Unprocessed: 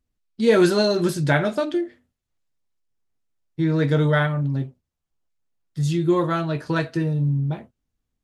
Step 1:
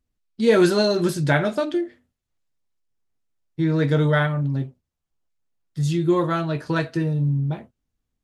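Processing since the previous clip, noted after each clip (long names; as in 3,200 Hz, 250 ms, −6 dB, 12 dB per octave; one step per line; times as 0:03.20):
no processing that can be heard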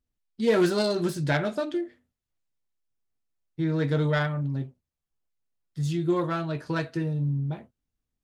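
phase distortion by the signal itself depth 0.12 ms
level −5.5 dB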